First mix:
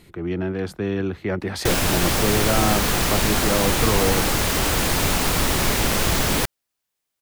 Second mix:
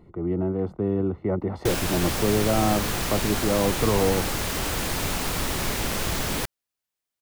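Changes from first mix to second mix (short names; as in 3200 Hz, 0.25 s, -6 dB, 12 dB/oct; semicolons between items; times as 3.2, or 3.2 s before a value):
speech: add polynomial smoothing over 65 samples; background -6.5 dB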